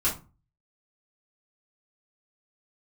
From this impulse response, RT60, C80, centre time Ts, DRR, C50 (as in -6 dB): 0.30 s, 17.0 dB, 22 ms, -8.0 dB, 10.0 dB